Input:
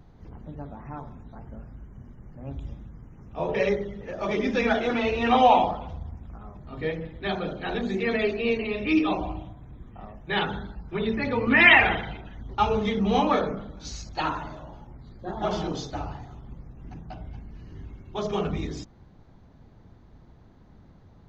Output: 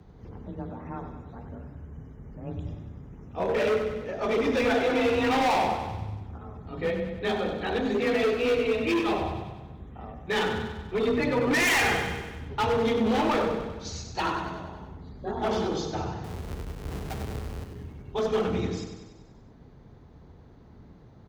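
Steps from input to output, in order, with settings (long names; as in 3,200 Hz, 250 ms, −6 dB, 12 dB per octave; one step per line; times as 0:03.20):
0:16.24–0:17.64: each half-wave held at its own peak
parametric band 410 Hz +6 dB 0.31 octaves
frequency shifter +24 Hz
gain into a clipping stage and back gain 22 dB
repeating echo 96 ms, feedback 59%, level −8 dB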